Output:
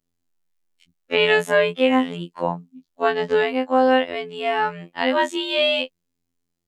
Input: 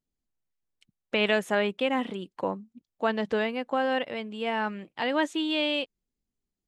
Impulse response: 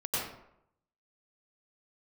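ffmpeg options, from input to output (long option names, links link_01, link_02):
-af "afftfilt=real='hypot(re,im)*cos(PI*b)':imag='0':win_size=2048:overlap=0.75,afftfilt=real='re*2*eq(mod(b,4),0)':imag='im*2*eq(mod(b,4),0)':win_size=2048:overlap=0.75,volume=7.5dB"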